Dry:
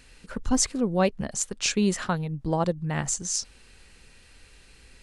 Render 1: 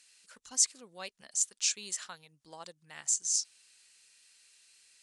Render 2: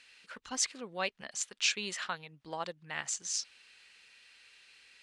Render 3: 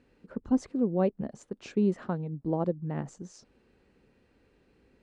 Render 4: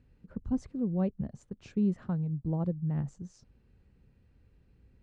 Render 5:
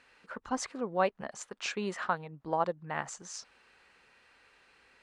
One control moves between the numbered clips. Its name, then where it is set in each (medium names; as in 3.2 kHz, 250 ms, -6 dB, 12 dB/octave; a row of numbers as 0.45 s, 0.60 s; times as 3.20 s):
band-pass filter, frequency: 7.7 kHz, 2.9 kHz, 310 Hz, 120 Hz, 1.1 kHz